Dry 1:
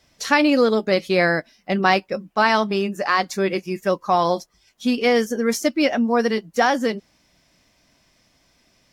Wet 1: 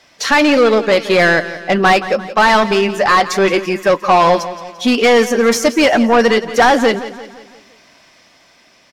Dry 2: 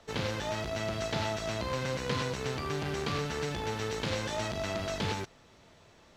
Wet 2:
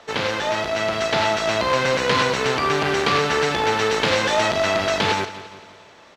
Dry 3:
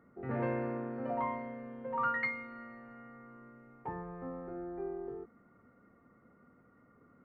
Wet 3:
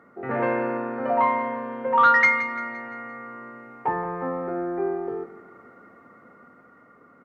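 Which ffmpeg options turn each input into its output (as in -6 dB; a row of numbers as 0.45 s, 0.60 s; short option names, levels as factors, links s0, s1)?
-filter_complex "[0:a]dynaudnorm=f=370:g=7:m=1.58,asplit=2[s0][s1];[s1]highpass=f=720:p=1,volume=11.2,asoftclip=type=tanh:threshold=0.794[s2];[s0][s2]amix=inputs=2:normalize=0,lowpass=f=2900:p=1,volume=0.501,aecho=1:1:172|344|516|688|860:0.188|0.0923|0.0452|0.0222|0.0109"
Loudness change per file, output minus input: +7.5 LU, +13.5 LU, +14.5 LU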